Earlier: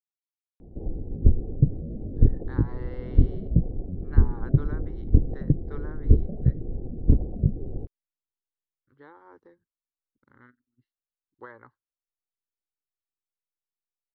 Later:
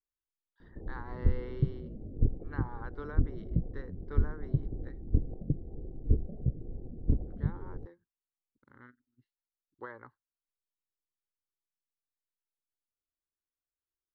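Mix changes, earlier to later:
speech: entry -1.60 s; background -9.0 dB

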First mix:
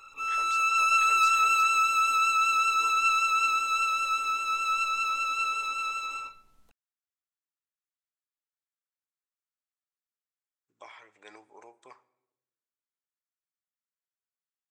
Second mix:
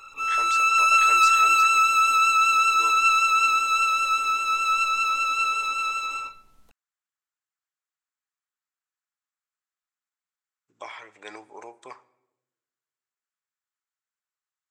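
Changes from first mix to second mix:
speech +9.5 dB; background +5.0 dB

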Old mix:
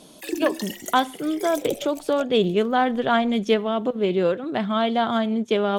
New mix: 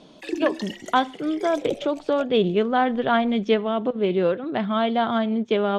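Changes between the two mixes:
speech: add distance through air 51 m; master: add low-pass 4.5 kHz 12 dB/octave

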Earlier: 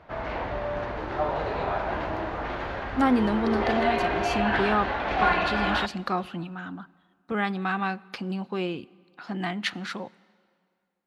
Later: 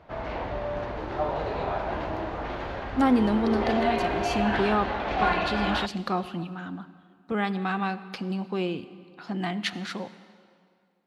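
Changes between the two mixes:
speech: send +10.5 dB; master: add peaking EQ 1.6 kHz -4 dB 1.4 oct

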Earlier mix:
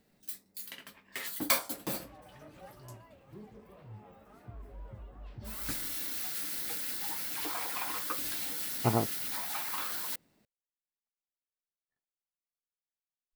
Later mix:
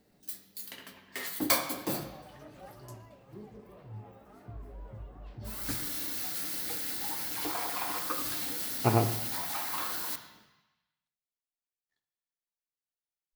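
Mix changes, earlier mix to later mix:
speech: remove low-pass 1.3 kHz; reverb: on, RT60 1.0 s

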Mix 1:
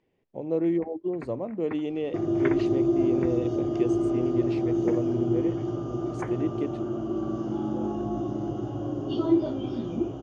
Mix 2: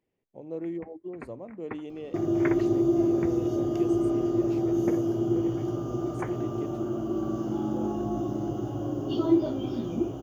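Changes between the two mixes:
speech -9.0 dB; master: remove low-pass 5.3 kHz 12 dB/octave

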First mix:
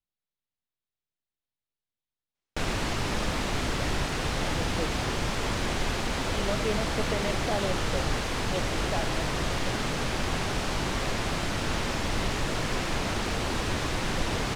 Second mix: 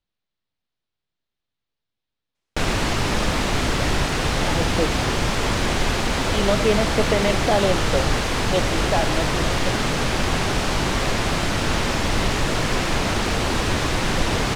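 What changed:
speech +11.0 dB; background +7.5 dB

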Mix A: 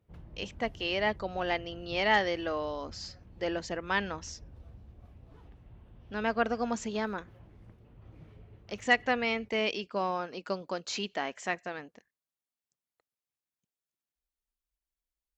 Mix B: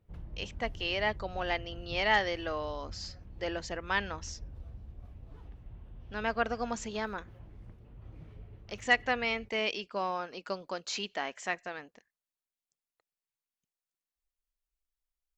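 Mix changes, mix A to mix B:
speech: add bass shelf 410 Hz -7.5 dB; master: remove high-pass 92 Hz 6 dB/octave

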